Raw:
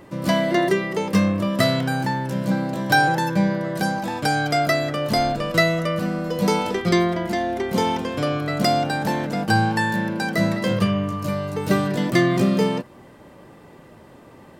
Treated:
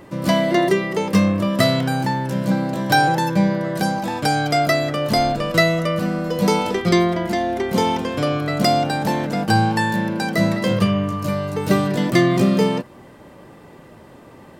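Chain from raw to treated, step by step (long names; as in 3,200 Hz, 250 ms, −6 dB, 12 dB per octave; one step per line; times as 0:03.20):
dynamic equaliser 1,600 Hz, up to −4 dB, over −37 dBFS, Q 4
level +2.5 dB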